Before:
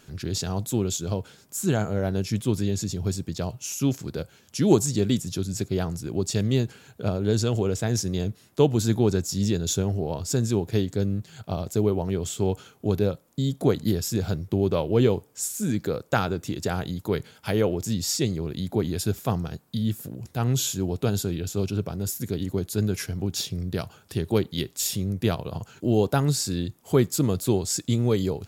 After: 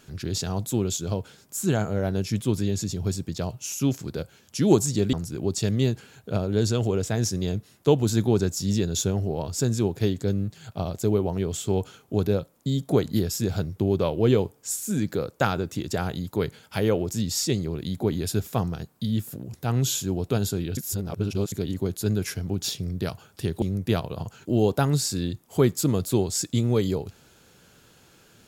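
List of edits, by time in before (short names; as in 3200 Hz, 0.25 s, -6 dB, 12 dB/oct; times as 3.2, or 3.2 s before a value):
5.13–5.85 cut
21.49–22.24 reverse
24.34–24.97 cut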